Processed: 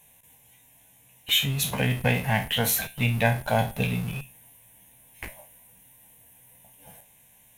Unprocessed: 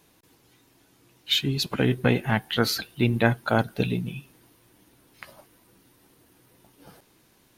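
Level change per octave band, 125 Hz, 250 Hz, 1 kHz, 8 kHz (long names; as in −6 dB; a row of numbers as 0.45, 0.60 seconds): +0.5, −4.5, +0.5, +7.5 decibels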